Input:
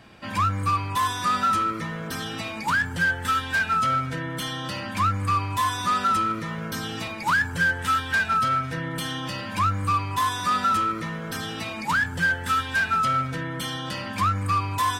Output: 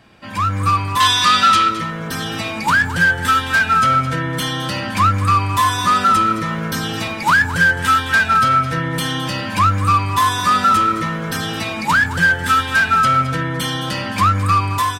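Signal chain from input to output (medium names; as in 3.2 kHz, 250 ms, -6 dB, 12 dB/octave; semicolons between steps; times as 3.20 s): 1.00–1.69 s: peaking EQ 3.6 kHz +14 dB 2 oct; level rider gain up to 8.5 dB; delay 215 ms -13.5 dB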